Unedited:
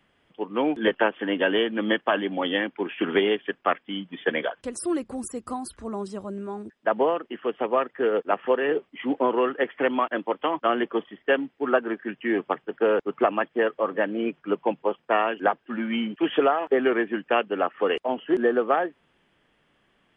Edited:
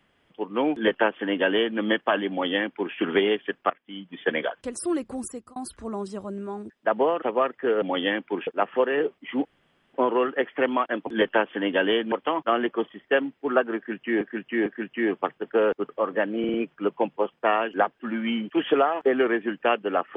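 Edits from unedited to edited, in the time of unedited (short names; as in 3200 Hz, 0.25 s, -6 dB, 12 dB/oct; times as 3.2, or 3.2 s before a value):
0.73–1.78 copy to 10.29
2.3–2.95 copy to 8.18
3.7–4.29 fade in, from -22.5 dB
5.26–5.56 fade out
7.22–7.58 cut
9.16 insert room tone 0.49 s
11.93–12.38 loop, 3 plays
13.16–13.7 cut
14.2 stutter 0.05 s, 4 plays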